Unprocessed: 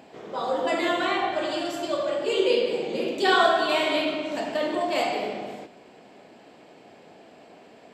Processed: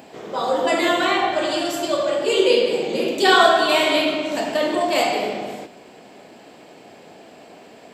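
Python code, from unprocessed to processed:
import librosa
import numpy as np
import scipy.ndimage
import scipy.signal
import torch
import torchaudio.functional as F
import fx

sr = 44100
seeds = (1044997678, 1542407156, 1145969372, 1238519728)

y = fx.high_shelf(x, sr, hz=7300.0, db=10.0)
y = y * librosa.db_to_amplitude(5.5)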